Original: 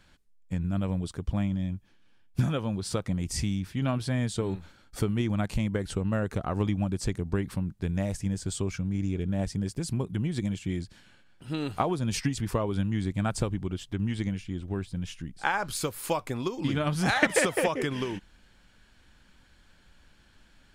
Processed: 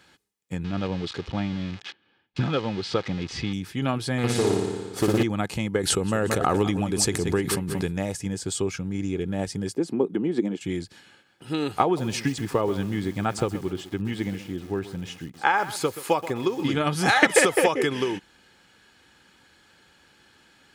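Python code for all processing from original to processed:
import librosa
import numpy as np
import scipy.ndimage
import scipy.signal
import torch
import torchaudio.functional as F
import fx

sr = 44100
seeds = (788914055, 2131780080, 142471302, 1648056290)

y = fx.chain(x, sr, fx.crossing_spikes(level_db=-23.5),
    fx.lowpass(hz=4000.0, slope=24), at=(0.64, 3.53))
y = fx.chain(y, sr, fx.room_flutter(wall_m=9.9, rt60_s=1.4),
    fx.doppler_dist(depth_ms=0.74), at=(4.18, 5.23))
y = fx.chain(y, sr, fx.high_shelf(hz=4500.0, db=6.5),
    fx.echo_feedback(ms=180, feedback_pct=29, wet_db=-14),
    fx.pre_swell(db_per_s=23.0), at=(5.83, 7.93))
y = fx.chain(y, sr, fx.highpass(hz=260.0, slope=24),
    fx.tilt_eq(slope=-4.5), at=(9.76, 10.61))
y = fx.chain(y, sr, fx.high_shelf(hz=4700.0, db=-8.0),
    fx.echo_crushed(ms=129, feedback_pct=35, bits=7, wet_db=-13), at=(11.84, 16.67))
y = scipy.signal.sosfilt(scipy.signal.butter(2, 160.0, 'highpass', fs=sr, output='sos'), y)
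y = y + 0.36 * np.pad(y, (int(2.4 * sr / 1000.0), 0))[:len(y)]
y = y * 10.0 ** (5.5 / 20.0)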